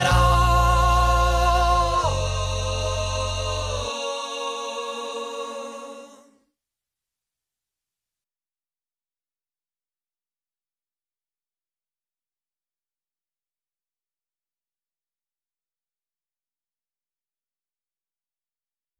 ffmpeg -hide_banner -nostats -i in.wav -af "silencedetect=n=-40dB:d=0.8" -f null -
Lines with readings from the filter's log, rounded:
silence_start: 6.19
silence_end: 18.99 | silence_duration: 12.80